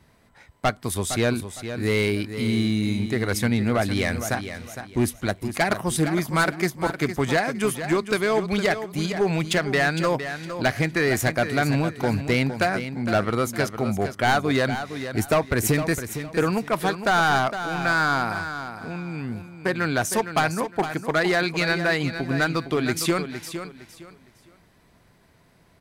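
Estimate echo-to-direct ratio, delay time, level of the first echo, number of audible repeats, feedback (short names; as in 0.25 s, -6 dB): -9.5 dB, 0.46 s, -10.0 dB, 3, 26%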